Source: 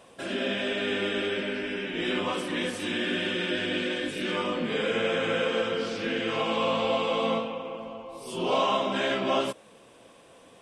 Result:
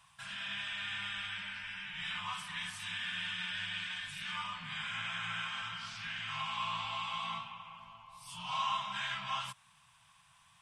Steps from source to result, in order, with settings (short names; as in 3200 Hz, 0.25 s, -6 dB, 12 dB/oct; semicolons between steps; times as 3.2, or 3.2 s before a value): elliptic band-stop 150–950 Hz, stop band 80 dB; gain -6 dB